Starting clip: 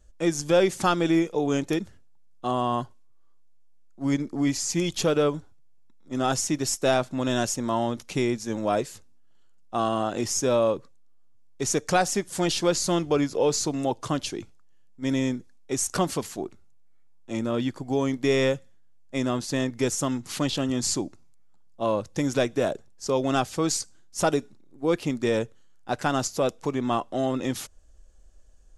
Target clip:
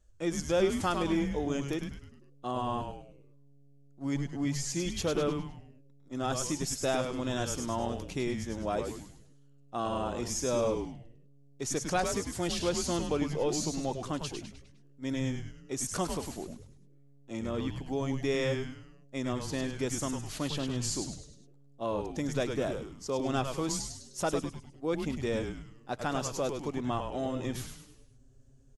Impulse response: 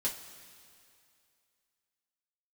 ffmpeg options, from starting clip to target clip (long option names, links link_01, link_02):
-filter_complex "[0:a]asplit=6[link_01][link_02][link_03][link_04][link_05][link_06];[link_02]adelay=102,afreqshift=-140,volume=-5.5dB[link_07];[link_03]adelay=204,afreqshift=-280,volume=-12.4dB[link_08];[link_04]adelay=306,afreqshift=-420,volume=-19.4dB[link_09];[link_05]adelay=408,afreqshift=-560,volume=-26.3dB[link_10];[link_06]adelay=510,afreqshift=-700,volume=-33.2dB[link_11];[link_01][link_07][link_08][link_09][link_10][link_11]amix=inputs=6:normalize=0,volume=-8dB"